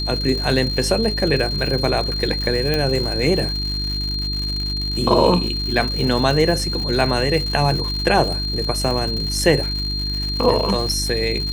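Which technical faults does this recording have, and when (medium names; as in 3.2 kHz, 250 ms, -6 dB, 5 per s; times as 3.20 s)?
crackle 180 per s -25 dBFS
hum 50 Hz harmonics 7 -26 dBFS
whine 4.2 kHz -24 dBFS
2.74 s: pop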